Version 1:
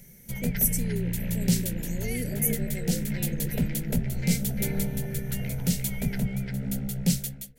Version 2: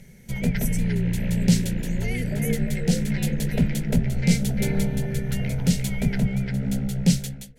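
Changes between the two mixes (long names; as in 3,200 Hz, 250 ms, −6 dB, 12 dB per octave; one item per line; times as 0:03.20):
background +5.5 dB
master: add high-frequency loss of the air 52 metres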